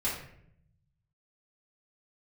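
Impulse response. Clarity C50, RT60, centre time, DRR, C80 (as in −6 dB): 3.5 dB, 0.70 s, 42 ms, −9.5 dB, 7.5 dB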